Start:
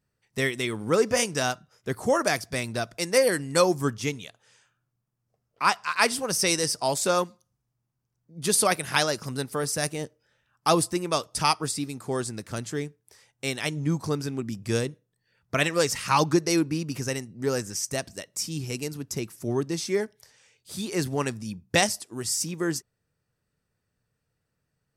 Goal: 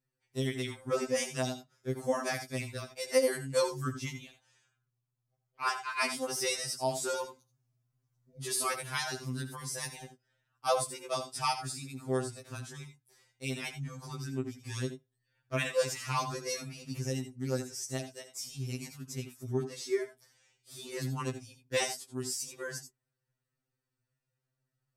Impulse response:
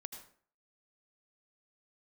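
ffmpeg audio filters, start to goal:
-filter_complex "[0:a]asettb=1/sr,asplit=3[a][b][c];[a]atrim=end=7.244[d];[b]atrim=start=7.24:end=8.41,asetpts=PTS-STARTPTS,afade=t=in:d=0.004:c=qsin,afade=t=out:st=1.166:d=0.004:c=qsin,acontrast=62[e];[c]atrim=start=8.406[f];[d][e]acrossfade=d=0.004:c1=hsin:c2=qsin[g];[g][f]acrossfade=d=0.004:c1=qsin:c2=hsin[h];[1:a]atrim=start_sample=2205,atrim=end_sample=3969[i];[h][i]afir=irnorm=-1:irlink=0,afftfilt=real='re*2.45*eq(mod(b,6),0)':imag='im*2.45*eq(mod(b,6),0)':win_size=2048:overlap=0.75,volume=-2dB"

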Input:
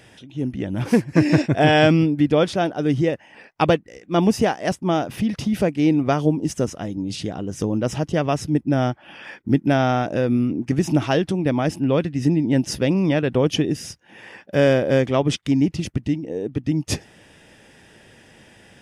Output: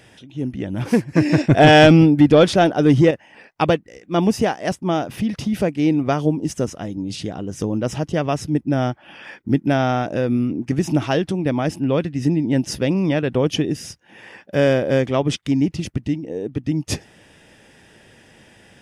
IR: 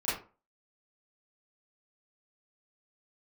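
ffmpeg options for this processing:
-filter_complex "[0:a]asettb=1/sr,asplit=3[a][b][c];[a]atrim=end=1.474[d];[b]atrim=start=1.47:end=3.11,asetpts=PTS-STARTPTS,afade=t=in:d=0.004:c=qsin,afade=t=out:st=1.636:d=0.004:c=qsin,acontrast=81[e];[c]atrim=start=3.106[f];[d][e]acrossfade=d=0.004:c1=hsin:c2=qsin[g];[g][f]acrossfade=d=0.004:c1=qsin:c2=hsin"

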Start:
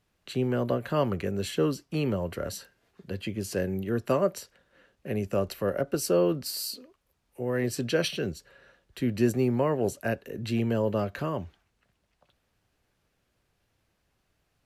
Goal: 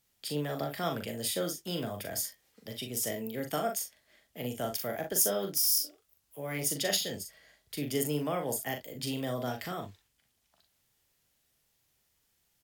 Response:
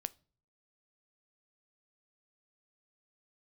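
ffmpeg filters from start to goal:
-af "crystalizer=i=5.5:c=0,aecho=1:1:47|71:0.531|0.188,asetrate=51156,aresample=44100,volume=-9dB"

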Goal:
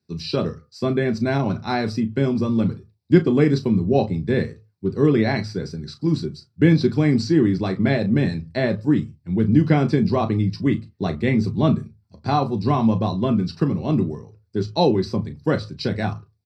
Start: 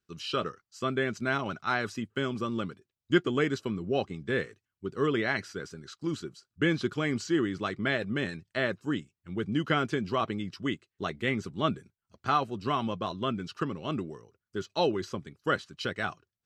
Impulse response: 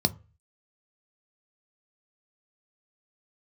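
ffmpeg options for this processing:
-filter_complex "[0:a]asplit=2[a][b];[b]adelay=36,volume=-12dB[c];[a][c]amix=inputs=2:normalize=0[d];[1:a]atrim=start_sample=2205,afade=t=out:st=0.23:d=0.01,atrim=end_sample=10584[e];[d][e]afir=irnorm=-1:irlink=0,volume=-4.5dB"

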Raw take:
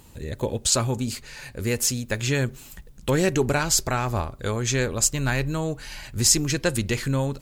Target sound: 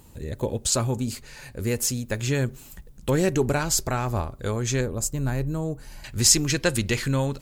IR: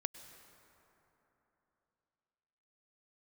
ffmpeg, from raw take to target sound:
-af "asetnsamples=n=441:p=0,asendcmd='4.81 equalizer g -14.5;6.04 equalizer g 2',equalizer=f=2.9k:w=0.43:g=-4.5"

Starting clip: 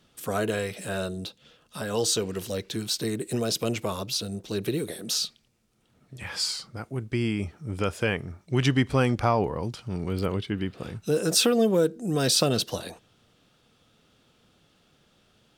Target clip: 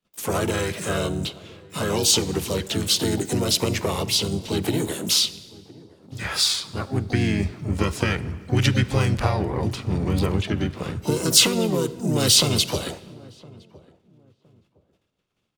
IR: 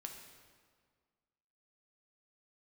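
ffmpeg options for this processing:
-filter_complex "[0:a]agate=range=-30dB:threshold=-59dB:ratio=16:detection=peak,acrossover=split=140|3000[a][b][c];[b]acompressor=threshold=-29dB:ratio=8[d];[a][d][c]amix=inputs=3:normalize=0,asplit=3[e][f][g];[f]asetrate=35002,aresample=44100,atempo=1.25992,volume=-2dB[h];[g]asetrate=88200,aresample=44100,atempo=0.5,volume=-12dB[i];[e][h][i]amix=inputs=3:normalize=0,asplit=2[j][k];[k]adelay=1013,lowpass=f=820:p=1,volume=-21dB,asplit=2[l][m];[m]adelay=1013,lowpass=f=820:p=1,volume=0.27[n];[j][l][n]amix=inputs=3:normalize=0,asplit=2[o][p];[1:a]atrim=start_sample=2205[q];[p][q]afir=irnorm=-1:irlink=0,volume=-5.5dB[r];[o][r]amix=inputs=2:normalize=0,volume=3.5dB"

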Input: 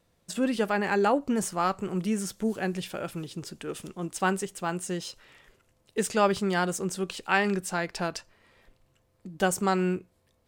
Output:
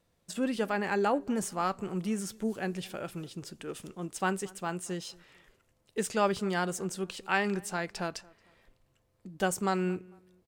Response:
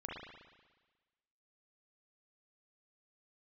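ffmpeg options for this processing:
-filter_complex "[0:a]asplit=2[a][b];[b]adelay=225,lowpass=f=2.1k:p=1,volume=-23.5dB,asplit=2[c][d];[d]adelay=225,lowpass=f=2.1k:p=1,volume=0.36[e];[a][c][e]amix=inputs=3:normalize=0,volume=-4dB"

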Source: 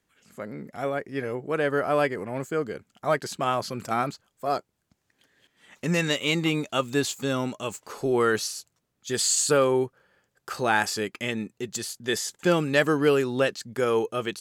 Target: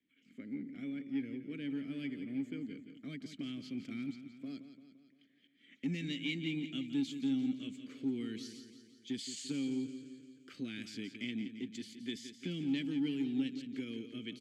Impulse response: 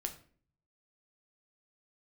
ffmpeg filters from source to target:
-filter_complex "[0:a]acrossover=split=230|3000[a][b][c];[b]acompressor=threshold=-37dB:ratio=6[d];[a][d][c]amix=inputs=3:normalize=0,asplit=3[e][f][g];[e]bandpass=f=270:t=q:w=8,volume=0dB[h];[f]bandpass=f=2.29k:t=q:w=8,volume=-6dB[i];[g]bandpass=f=3.01k:t=q:w=8,volume=-9dB[j];[h][i][j]amix=inputs=3:normalize=0,lowshelf=f=220:g=5.5,aecho=1:1:172|344|516|688|860|1032:0.282|0.158|0.0884|0.0495|0.0277|0.0155,asplit=2[k][l];[l]asoftclip=type=tanh:threshold=-36.5dB,volume=-11dB[m];[k][m]amix=inputs=2:normalize=0,volume=1dB"

